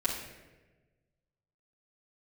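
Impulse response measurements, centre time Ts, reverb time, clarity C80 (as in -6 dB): 43 ms, 1.2 s, 6.5 dB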